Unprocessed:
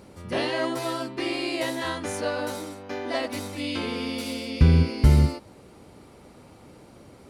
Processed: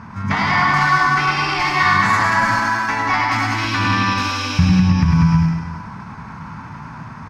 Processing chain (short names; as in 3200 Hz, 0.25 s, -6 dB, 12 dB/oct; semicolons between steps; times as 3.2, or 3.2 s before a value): compressor 8:1, threshold -28 dBFS, peak gain reduction 17 dB; low shelf 75 Hz -12 dB; notches 60/120/180/240/300/360 Hz; on a send: bouncing-ball echo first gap 0.19 s, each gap 0.65×, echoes 5; on the sum: one-sided clip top -26 dBFS, bottom -21.5 dBFS; EQ curve 170 Hz 0 dB, 310 Hz -23 dB, 520 Hz -26 dB, 840 Hz 0 dB, 1800 Hz -2 dB, 2700 Hz -15 dB, 5300 Hz -11 dB, 9400 Hz -30 dB; pitch shift +2 st; echo 0.103 s -4.5 dB; maximiser +24 dB; mismatched tape noise reduction decoder only; gain -2.5 dB